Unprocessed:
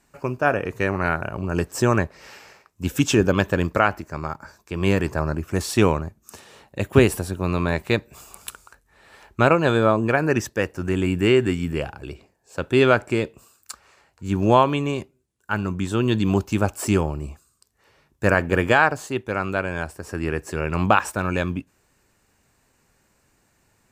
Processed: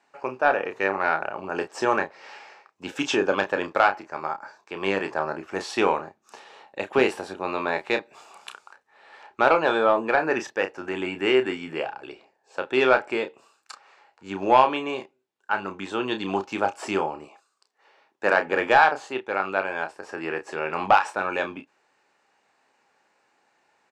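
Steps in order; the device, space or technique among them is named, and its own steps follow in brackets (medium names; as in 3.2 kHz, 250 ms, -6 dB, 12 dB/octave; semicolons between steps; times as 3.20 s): 17.24–18.45 s: high-pass 430 Hz -> 130 Hz 12 dB/octave; intercom (band-pass 440–4100 Hz; peaking EQ 820 Hz +7.5 dB 0.22 oct; saturation -6.5 dBFS, distortion -18 dB; doubling 31 ms -8 dB)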